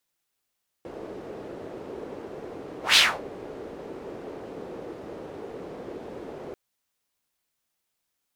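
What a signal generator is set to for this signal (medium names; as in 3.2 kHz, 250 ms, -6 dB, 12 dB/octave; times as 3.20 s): whoosh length 5.69 s, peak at 2.11 s, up 0.15 s, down 0.28 s, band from 420 Hz, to 3.5 kHz, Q 2.2, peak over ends 23 dB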